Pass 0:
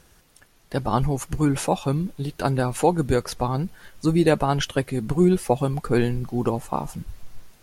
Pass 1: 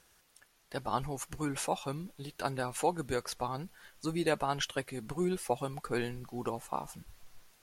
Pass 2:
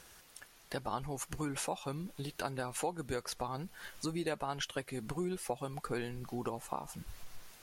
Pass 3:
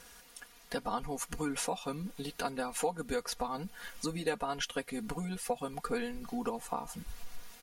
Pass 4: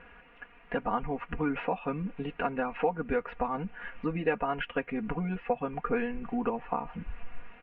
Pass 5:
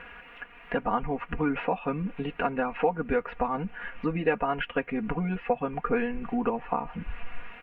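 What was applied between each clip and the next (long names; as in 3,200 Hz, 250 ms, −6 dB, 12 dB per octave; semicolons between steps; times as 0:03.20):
low-shelf EQ 420 Hz −11.5 dB; level −6.5 dB
downward compressor 2.5 to 1, threshold −48 dBFS, peak gain reduction 16 dB; level +8 dB
comb filter 4.2 ms, depth 93%
Chebyshev low-pass filter 2,700 Hz, order 5; level +5.5 dB
one half of a high-frequency compander encoder only; level +3 dB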